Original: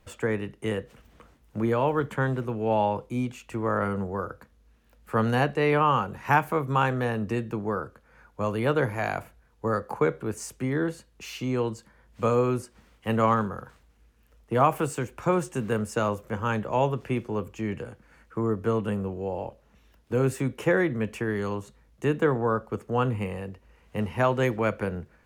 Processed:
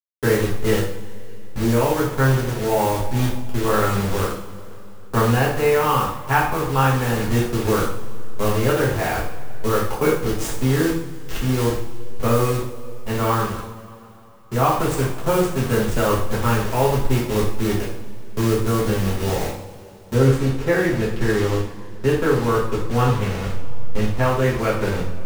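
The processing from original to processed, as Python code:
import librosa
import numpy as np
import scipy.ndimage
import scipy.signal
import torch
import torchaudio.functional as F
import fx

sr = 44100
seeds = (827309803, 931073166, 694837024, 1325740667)

y = fx.delta_hold(x, sr, step_db=-29.5)
y = fx.low_shelf(y, sr, hz=61.0, db=11.0)
y = fx.rider(y, sr, range_db=3, speed_s=0.5)
y = fx.high_shelf(y, sr, hz=8700.0, db=fx.steps((0.0, 4.0), (20.13, -7.0)))
y = fx.rev_double_slope(y, sr, seeds[0], early_s=0.53, late_s=3.3, knee_db=-20, drr_db=-6.0)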